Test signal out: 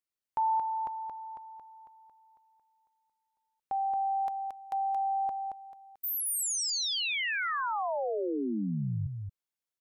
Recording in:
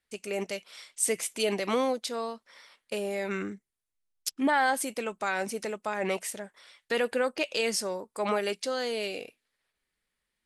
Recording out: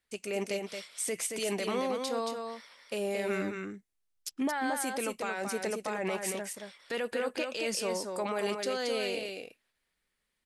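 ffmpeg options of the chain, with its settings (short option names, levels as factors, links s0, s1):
-filter_complex "[0:a]alimiter=limit=0.0631:level=0:latency=1:release=45,asplit=2[s0][s1];[s1]aecho=0:1:225:0.562[s2];[s0][s2]amix=inputs=2:normalize=0"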